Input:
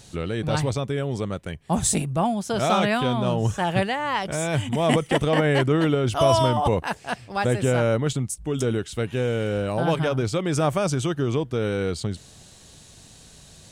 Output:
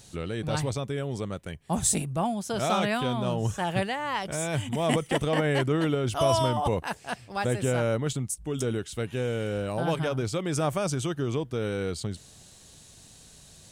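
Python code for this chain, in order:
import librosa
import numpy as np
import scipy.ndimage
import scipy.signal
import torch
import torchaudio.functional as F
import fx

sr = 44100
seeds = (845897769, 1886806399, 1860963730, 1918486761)

y = fx.high_shelf(x, sr, hz=7700.0, db=6.5)
y = F.gain(torch.from_numpy(y), -5.0).numpy()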